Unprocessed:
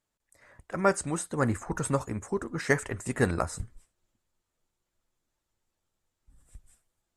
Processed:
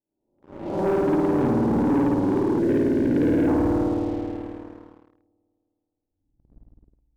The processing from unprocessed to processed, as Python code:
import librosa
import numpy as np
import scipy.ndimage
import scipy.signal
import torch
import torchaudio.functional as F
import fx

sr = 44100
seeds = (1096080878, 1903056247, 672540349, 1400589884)

p1 = fx.spec_swells(x, sr, rise_s=0.87)
p2 = fx.formant_cascade(p1, sr, vowel='u')
p3 = fx.air_absorb(p2, sr, metres=220.0)
p4 = fx.env_lowpass(p3, sr, base_hz=720.0, full_db=-32.0)
p5 = fx.peak_eq(p4, sr, hz=1200.0, db=3.0, octaves=2.8)
p6 = p5 + fx.echo_single(p5, sr, ms=351, db=-9.0, dry=0)
p7 = fx.rev_spring(p6, sr, rt60_s=2.8, pass_ms=(53,), chirp_ms=45, drr_db=-7.0)
p8 = fx.leveller(p7, sr, passes=3)
y = fx.spec_box(p8, sr, start_s=2.59, length_s=0.89, low_hz=700.0, high_hz=1400.0, gain_db=-12)